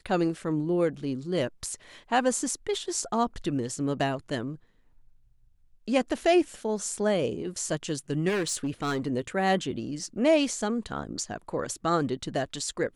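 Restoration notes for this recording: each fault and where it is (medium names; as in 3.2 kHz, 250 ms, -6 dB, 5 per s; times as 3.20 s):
8.28–9.08 s: clipped -24.5 dBFS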